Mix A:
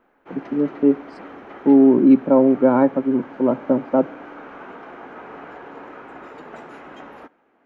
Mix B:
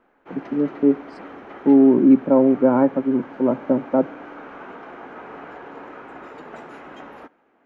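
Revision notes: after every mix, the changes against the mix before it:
first voice: add high-frequency loss of the air 430 metres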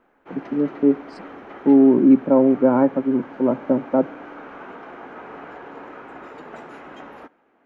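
second voice +5.0 dB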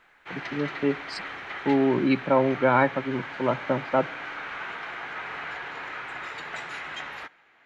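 first voice: remove high-frequency loss of the air 430 metres
master: add octave-band graphic EQ 125/250/500/2,000/4,000/8,000 Hz +5/−12/−5/+10/+12/+10 dB

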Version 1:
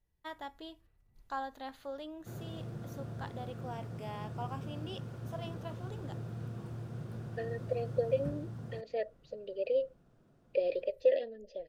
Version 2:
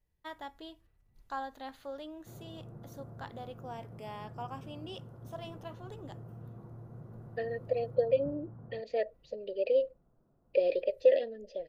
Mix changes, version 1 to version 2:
second voice +3.5 dB
background: add transistor ladder low-pass 1,400 Hz, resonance 25%

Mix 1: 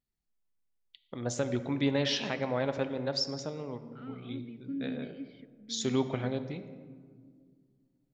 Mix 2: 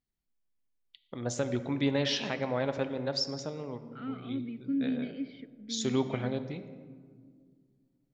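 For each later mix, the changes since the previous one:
second voice +6.0 dB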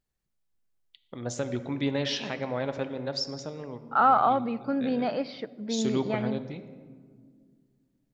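second voice: remove formant filter i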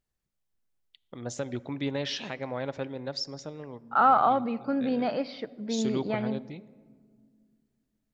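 first voice: send −11.0 dB

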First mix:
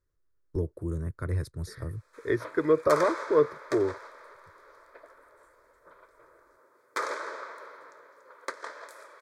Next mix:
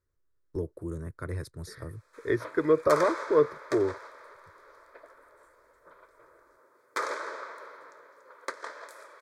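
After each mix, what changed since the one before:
first voice: add low-shelf EQ 150 Hz −8.5 dB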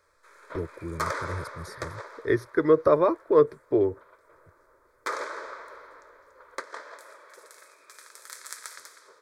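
second voice +3.5 dB
background: entry −1.90 s

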